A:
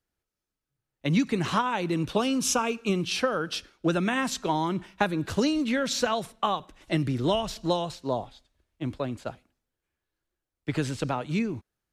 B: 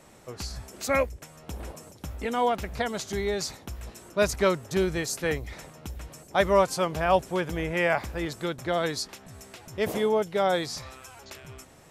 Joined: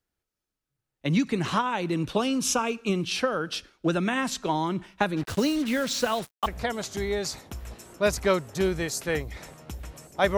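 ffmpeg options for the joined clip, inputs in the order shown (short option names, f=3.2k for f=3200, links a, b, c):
-filter_complex "[0:a]asplit=3[a][b][c];[a]afade=t=out:st=5.16:d=0.02[d];[b]acrusher=bits=5:mix=0:aa=0.5,afade=t=in:st=5.16:d=0.02,afade=t=out:st=6.46:d=0.02[e];[c]afade=t=in:st=6.46:d=0.02[f];[d][e][f]amix=inputs=3:normalize=0,apad=whole_dur=10.37,atrim=end=10.37,atrim=end=6.462[g];[1:a]atrim=start=2.618:end=6.53[h];[g][h]acrossfade=d=0.004:c1=hsin:c2=hsin"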